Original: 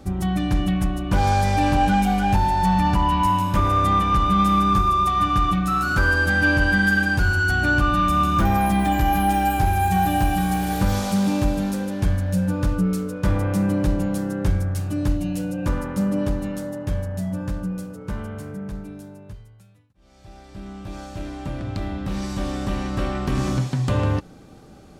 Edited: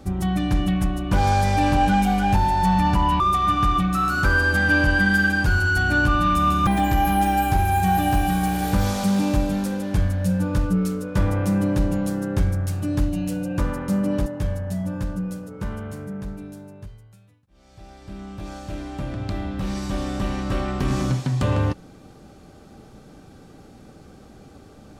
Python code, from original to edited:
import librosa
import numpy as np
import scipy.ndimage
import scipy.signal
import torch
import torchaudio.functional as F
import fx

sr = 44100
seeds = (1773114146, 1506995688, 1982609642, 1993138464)

y = fx.edit(x, sr, fx.cut(start_s=3.2, length_s=1.73),
    fx.cut(start_s=8.4, length_s=0.35),
    fx.cut(start_s=16.34, length_s=0.39), tone=tone)